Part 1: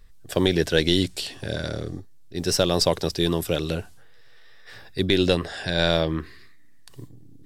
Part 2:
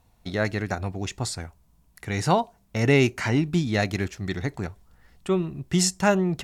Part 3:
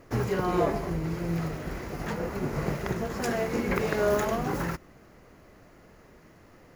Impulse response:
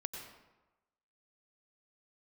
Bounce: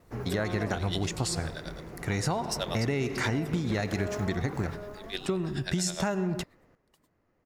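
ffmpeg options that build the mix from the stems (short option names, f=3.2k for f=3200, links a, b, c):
-filter_complex "[0:a]highpass=680,aeval=exprs='val(0)*pow(10,-18*(0.5-0.5*cos(2*PI*9.5*n/s))/20)':c=same,volume=-4dB[a];[1:a]equalizer=f=2.9k:t=o:w=0.77:g=-3.5,volume=1dB,asplit=2[b][c];[c]volume=-11dB[d];[2:a]highshelf=f=3.4k:g=-9,volume=-8.5dB,asplit=2[e][f];[f]volume=-9.5dB[g];[a][b]amix=inputs=2:normalize=0,agate=range=-33dB:threshold=-59dB:ratio=3:detection=peak,acompressor=threshold=-24dB:ratio=6,volume=0dB[h];[3:a]atrim=start_sample=2205[i];[d][i]afir=irnorm=-1:irlink=0[j];[g]aecho=0:1:750:1[k];[e][h][j][k]amix=inputs=4:normalize=0,acompressor=threshold=-25dB:ratio=6"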